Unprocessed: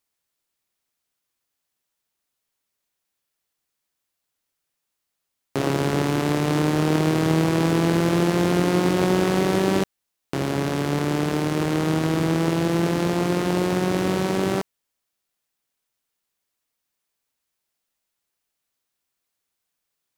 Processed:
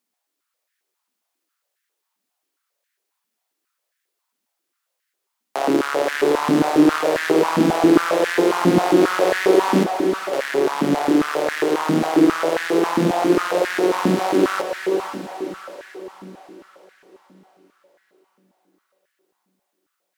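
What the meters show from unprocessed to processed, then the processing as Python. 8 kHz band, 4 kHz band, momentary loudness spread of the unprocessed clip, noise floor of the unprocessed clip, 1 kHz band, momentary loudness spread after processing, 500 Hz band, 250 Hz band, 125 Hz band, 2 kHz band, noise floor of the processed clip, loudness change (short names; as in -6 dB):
+1.5 dB, +2.0 dB, 5 LU, -81 dBFS, +6.5 dB, 14 LU, +5.5 dB, +3.5 dB, -6.5 dB, +5.5 dB, -79 dBFS, +3.5 dB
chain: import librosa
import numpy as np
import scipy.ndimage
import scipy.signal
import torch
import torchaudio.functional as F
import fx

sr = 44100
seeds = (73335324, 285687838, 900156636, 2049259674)

y = fx.echo_diffused(x, sr, ms=521, feedback_pct=48, wet_db=-6.0)
y = fx.filter_held_highpass(y, sr, hz=7.4, low_hz=230.0, high_hz=1700.0)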